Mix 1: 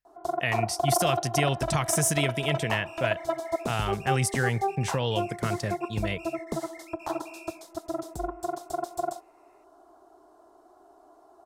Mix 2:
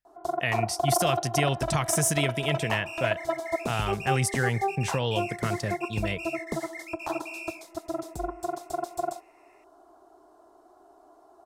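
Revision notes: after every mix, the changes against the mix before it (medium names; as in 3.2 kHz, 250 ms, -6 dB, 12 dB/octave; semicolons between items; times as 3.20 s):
second sound +9.0 dB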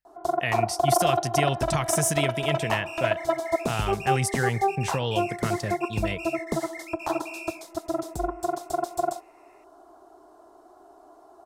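first sound +4.0 dB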